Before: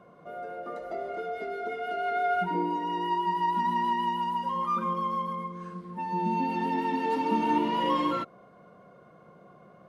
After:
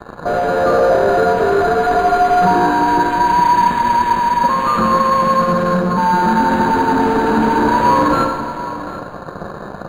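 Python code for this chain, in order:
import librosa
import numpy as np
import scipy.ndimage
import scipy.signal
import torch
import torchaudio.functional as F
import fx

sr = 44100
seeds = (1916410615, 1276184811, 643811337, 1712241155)

y = fx.high_shelf(x, sr, hz=4200.0, db=-4.5)
y = fx.fuzz(y, sr, gain_db=48.0, gate_db=-51.0)
y = fx.rev_schroeder(y, sr, rt60_s=1.6, comb_ms=32, drr_db=3.5)
y = fx.quant_dither(y, sr, seeds[0], bits=8, dither='none')
y = fx.brickwall_bandstop(y, sr, low_hz=1800.0, high_hz=5200.0)
y = y + 10.0 ** (-14.5 / 20.0) * np.pad(y, (int(746 * sr / 1000.0), 0))[:len(y)]
y = np.interp(np.arange(len(y)), np.arange(len(y))[::8], y[::8])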